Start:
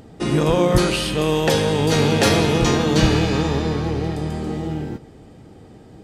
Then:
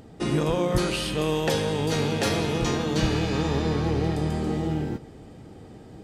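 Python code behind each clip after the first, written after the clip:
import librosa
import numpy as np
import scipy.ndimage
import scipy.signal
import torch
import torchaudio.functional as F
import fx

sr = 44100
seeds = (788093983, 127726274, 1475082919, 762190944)

y = fx.rider(x, sr, range_db=5, speed_s=0.5)
y = y * librosa.db_to_amplitude(-6.0)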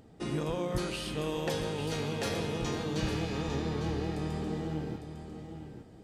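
y = x + 10.0 ** (-9.0 / 20.0) * np.pad(x, (int(853 * sr / 1000.0), 0))[:len(x)]
y = y * librosa.db_to_amplitude(-9.0)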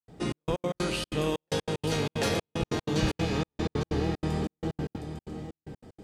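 y = fx.step_gate(x, sr, bpm=188, pattern='.xxx..x.x.xxx', floor_db=-60.0, edge_ms=4.5)
y = y * librosa.db_to_amplitude(5.5)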